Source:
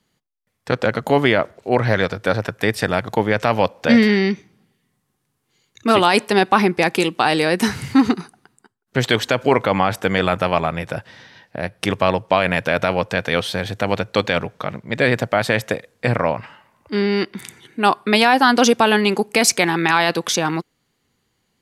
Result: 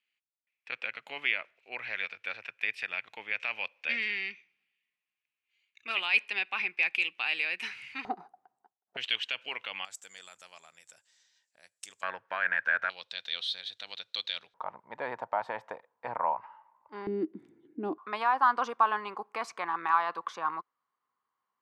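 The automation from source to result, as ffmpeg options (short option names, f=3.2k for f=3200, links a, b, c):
-af "asetnsamples=n=441:p=0,asendcmd='8.05 bandpass f 750;8.97 bandpass f 2800;9.85 bandpass f 7400;12.03 bandpass f 1600;12.9 bandpass f 3800;14.54 bandpass f 930;17.07 bandpass f 310;17.98 bandpass f 1100',bandpass=f=2.5k:t=q:w=7.2:csg=0"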